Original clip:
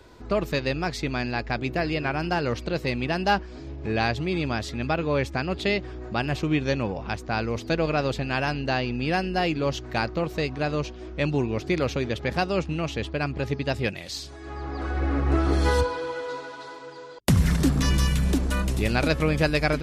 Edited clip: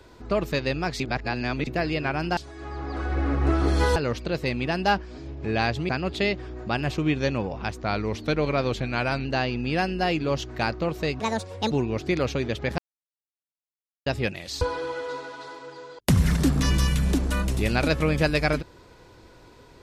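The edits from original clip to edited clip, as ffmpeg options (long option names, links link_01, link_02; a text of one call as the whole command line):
ffmpeg -i in.wav -filter_complex "[0:a]asplit=13[link_01][link_02][link_03][link_04][link_05][link_06][link_07][link_08][link_09][link_10][link_11][link_12][link_13];[link_01]atrim=end=1.002[link_14];[link_02]atrim=start=0.998:end=1.672,asetpts=PTS-STARTPTS,areverse[link_15];[link_03]atrim=start=1.668:end=2.372[link_16];[link_04]atrim=start=14.218:end=15.812[link_17];[link_05]atrim=start=2.368:end=4.302[link_18];[link_06]atrim=start=5.338:end=7.294[link_19];[link_07]atrim=start=7.29:end=8.6,asetpts=PTS-STARTPTS,asetrate=41013,aresample=44100,atrim=end_sample=62119,asetpts=PTS-STARTPTS[link_20];[link_08]atrim=start=8.596:end=10.554[link_21];[link_09]atrim=start=10.55:end=11.32,asetpts=PTS-STARTPTS,asetrate=66150,aresample=44100[link_22];[link_10]atrim=start=11.316:end=12.39,asetpts=PTS-STARTPTS,afade=type=out:start_time=1.07:duration=0.004:curve=hsin[link_23];[link_11]atrim=start=12.39:end=13.67,asetpts=PTS-STARTPTS,volume=0[link_24];[link_12]atrim=start=13.67:end=14.222,asetpts=PTS-STARTPTS,afade=type=in:duration=0.004:curve=hsin[link_25];[link_13]atrim=start=15.808[link_26];[link_14][link_15]acrossfade=duration=0.004:curve1=hsin:curve2=hsin[link_27];[link_27][link_16]acrossfade=duration=0.004:curve1=hsin:curve2=hsin[link_28];[link_28][link_17]acrossfade=duration=0.004:curve1=hsin:curve2=hsin[link_29];[link_29][link_18]acrossfade=duration=0.004:curve1=hsin:curve2=hsin[link_30];[link_30][link_19]acrossfade=duration=0.004:curve1=hsin:curve2=hsin[link_31];[link_31][link_20]acrossfade=duration=0.004:curve1=hsin:curve2=hsin[link_32];[link_32][link_21]acrossfade=duration=0.004:curve1=hsin:curve2=hsin[link_33];[link_33][link_22]acrossfade=duration=0.004:curve1=hsin:curve2=hsin[link_34];[link_23][link_24][link_25]concat=n=3:v=0:a=1[link_35];[link_34][link_35]acrossfade=duration=0.004:curve1=hsin:curve2=hsin[link_36];[link_36][link_26]acrossfade=duration=0.004:curve1=hsin:curve2=hsin" out.wav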